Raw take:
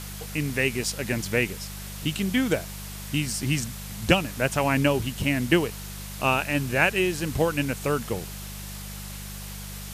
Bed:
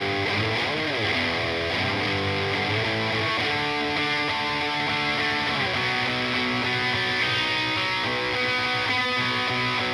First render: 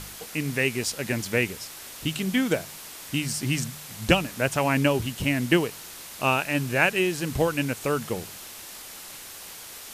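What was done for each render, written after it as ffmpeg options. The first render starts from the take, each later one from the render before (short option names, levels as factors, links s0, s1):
-af "bandreject=f=50:t=h:w=4,bandreject=f=100:t=h:w=4,bandreject=f=150:t=h:w=4,bandreject=f=200:t=h:w=4"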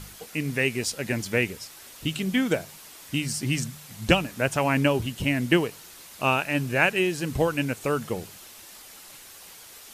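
-af "afftdn=nr=6:nf=-42"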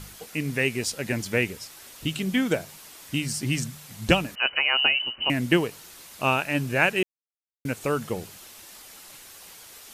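-filter_complex "[0:a]asettb=1/sr,asplit=3[s0][s1][s2];[s0]atrim=end=4.354[s3];[s1]atrim=start=4.35:end=5.3,asetpts=PTS-STARTPTS,afade=t=in:d=0.004:c=qsin,afade=t=out:st=0.946:d=0.004:c=qsin,lowpass=f=2600:t=q:w=0.5098,lowpass=f=2600:t=q:w=0.6013,lowpass=f=2600:t=q:w=0.9,lowpass=f=2600:t=q:w=2.563,afreqshift=-3100[s4];[s2]atrim=start=5.296[s5];[s3][s4]acrossfade=d=0.004:c1=hsin:c2=qsin[s6];[s6][s5]acrossfade=d=0.004:c1=qsin:c2=hsin,asplit=3[s7][s8][s9];[s7]atrim=end=7.03,asetpts=PTS-STARTPTS,afade=t=out:st=7.026:d=0.004:c=hsin[s10];[s8]atrim=start=7.03:end=7.65,asetpts=PTS-STARTPTS,volume=0[s11];[s9]atrim=start=7.65,asetpts=PTS-STARTPTS,afade=t=in:d=0.004:c=hsin[s12];[s10][s11][s12]concat=n=3:v=0:a=1"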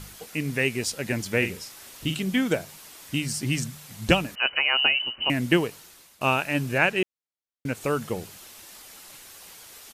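-filter_complex "[0:a]asplit=3[s0][s1][s2];[s0]afade=t=out:st=1.41:d=0.02[s3];[s1]asplit=2[s4][s5];[s5]adelay=44,volume=0.398[s6];[s4][s6]amix=inputs=2:normalize=0,afade=t=in:st=1.41:d=0.02,afade=t=out:st=2.14:d=0.02[s7];[s2]afade=t=in:st=2.14:d=0.02[s8];[s3][s7][s8]amix=inputs=3:normalize=0,asettb=1/sr,asplit=3[s9][s10][s11];[s9]atrim=end=6.784[s12];[s10]atrim=start=6.78:end=7.75,asetpts=PTS-STARTPTS,afade=t=in:d=0.004:c=qsin,afade=t=out:st=0.966:d=0.004:c=qsin,highshelf=f=8800:g=-9[s13];[s11]atrim=start=7.746[s14];[s12][s13]acrossfade=d=0.004:c1=hsin:c2=qsin[s15];[s15][s14]acrossfade=d=0.004:c1=qsin:c2=hsin,asplit=2[s16][s17];[s16]atrim=end=6.21,asetpts=PTS-STARTPTS,afade=t=out:st=5.66:d=0.55:silence=0.199526[s18];[s17]atrim=start=6.21,asetpts=PTS-STARTPTS,afade=t=in:d=0.004:c=hsin:silence=0.199526[s19];[s18][s19]concat=n=2:v=0:a=1"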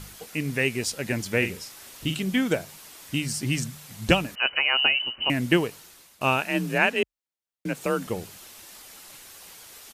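-filter_complex "[0:a]asettb=1/sr,asplit=3[s0][s1][s2];[s0]atrim=end=6.424[s3];[s1]atrim=start=6.42:end=8.07,asetpts=PTS-STARTPTS,afade=t=in:d=0.004:c=qsin,afade=t=out:st=1.646:d=0.004:c=qsin,afreqshift=37[s4];[s2]atrim=start=8.066[s5];[s3][s4]acrossfade=d=0.004:c1=hsin:c2=qsin[s6];[s6][s5]acrossfade=d=0.004:c1=qsin:c2=hsin"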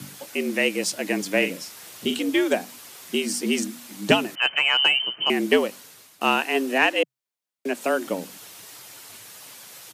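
-filter_complex "[0:a]afreqshift=91,asplit=2[s0][s1];[s1]asoftclip=type=hard:threshold=0.133,volume=0.355[s2];[s0][s2]amix=inputs=2:normalize=0"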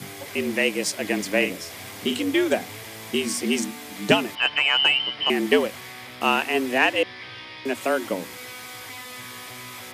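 -filter_complex "[1:a]volume=0.168[s0];[0:a][s0]amix=inputs=2:normalize=0"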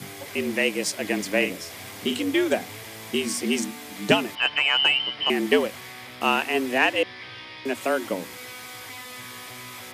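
-af "volume=0.891"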